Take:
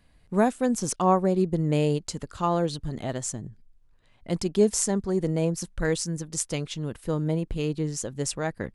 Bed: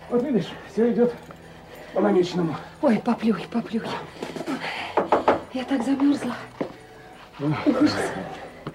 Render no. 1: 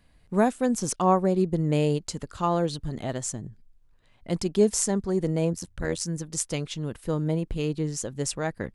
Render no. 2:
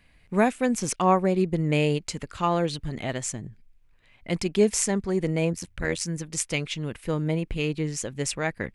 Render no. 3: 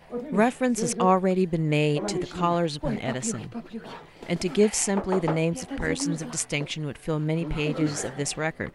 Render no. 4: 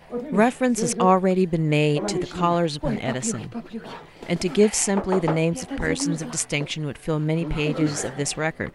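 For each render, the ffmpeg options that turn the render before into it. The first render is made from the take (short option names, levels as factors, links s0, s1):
-filter_complex "[0:a]asettb=1/sr,asplit=3[s0][s1][s2];[s0]atrim=end=5.534[s3];[s1]atrim=start=5.53:end=6.01,asetpts=PTS-STARTPTS,afade=t=in:d=0.004:c=qsin,afade=t=out:st=0.476:d=0.004:c=qsin,tremolo=f=85:d=0.824[s4];[s2]atrim=start=6.006[s5];[s3][s4]acrossfade=d=0.004:c1=hsin:c2=qsin[s6];[s6][s5]acrossfade=d=0.004:c1=qsin:c2=hsin"
-af "equalizer=f=2300:w=1.7:g=11"
-filter_complex "[1:a]volume=0.299[s0];[0:a][s0]amix=inputs=2:normalize=0"
-af "volume=1.41"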